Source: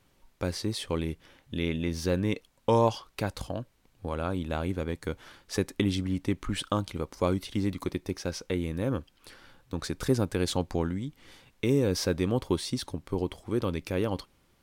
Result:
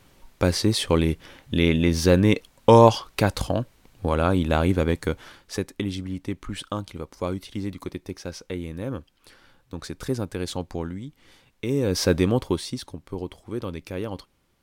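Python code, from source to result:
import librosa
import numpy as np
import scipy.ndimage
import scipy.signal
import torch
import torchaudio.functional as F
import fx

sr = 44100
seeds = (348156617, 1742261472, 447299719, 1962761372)

y = fx.gain(x, sr, db=fx.line((4.92, 10.0), (5.72, -1.5), (11.66, -1.5), (12.14, 8.5), (12.87, -2.0)))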